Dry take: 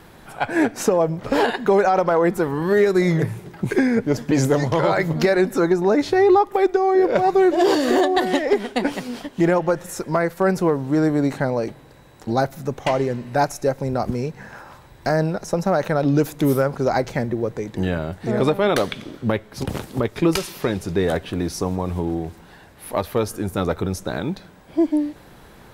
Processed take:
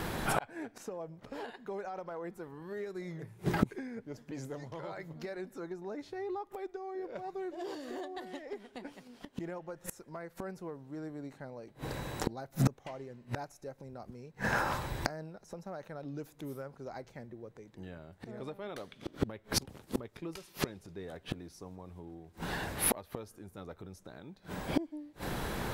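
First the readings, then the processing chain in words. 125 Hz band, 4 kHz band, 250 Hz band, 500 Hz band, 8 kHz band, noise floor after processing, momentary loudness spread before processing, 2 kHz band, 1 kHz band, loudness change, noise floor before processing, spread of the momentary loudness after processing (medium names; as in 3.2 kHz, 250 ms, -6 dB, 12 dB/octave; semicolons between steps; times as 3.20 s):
-15.5 dB, -12.5 dB, -19.5 dB, -22.0 dB, -7.5 dB, -62 dBFS, 10 LU, -14.5 dB, -18.5 dB, -19.0 dB, -46 dBFS, 16 LU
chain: inverted gate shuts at -24 dBFS, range -33 dB; trim +9 dB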